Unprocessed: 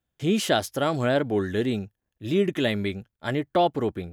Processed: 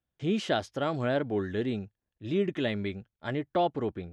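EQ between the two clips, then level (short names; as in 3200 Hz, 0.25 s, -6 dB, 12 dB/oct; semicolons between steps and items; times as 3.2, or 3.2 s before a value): air absorption 110 m; -5.0 dB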